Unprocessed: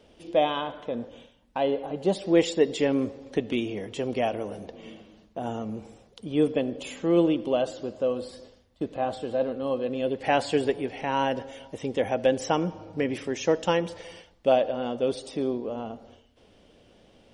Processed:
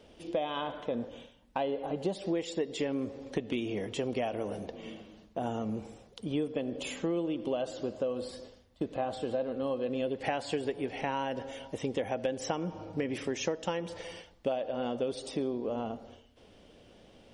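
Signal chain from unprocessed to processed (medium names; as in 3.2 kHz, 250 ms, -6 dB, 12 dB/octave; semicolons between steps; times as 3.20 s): compression 12:1, threshold -28 dBFS, peak gain reduction 14.5 dB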